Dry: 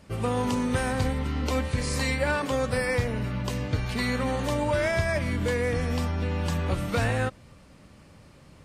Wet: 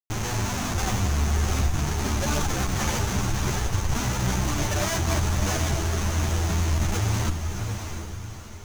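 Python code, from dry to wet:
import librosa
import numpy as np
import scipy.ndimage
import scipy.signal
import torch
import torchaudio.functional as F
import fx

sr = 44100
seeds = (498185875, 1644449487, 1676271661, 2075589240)

p1 = fx.delta_mod(x, sr, bps=64000, step_db=-42.0)
p2 = fx.dereverb_blind(p1, sr, rt60_s=1.3)
p3 = fx.highpass(p2, sr, hz=66.0, slope=6)
p4 = fx.low_shelf(p3, sr, hz=330.0, db=9.5)
p5 = fx.over_compress(p4, sr, threshold_db=-28.0, ratio=-1.0)
p6 = p4 + (p5 * librosa.db_to_amplitude(0.0))
p7 = fx.schmitt(p6, sr, flips_db=-20.5)
p8 = fx.graphic_eq_31(p7, sr, hz=(100, 160, 250, 500, 6300), db=(3, -3, -10, -11, 12))
p9 = fx.echo_diffused(p8, sr, ms=685, feedback_pct=43, wet_db=-6.0)
y = fx.ensemble(p9, sr)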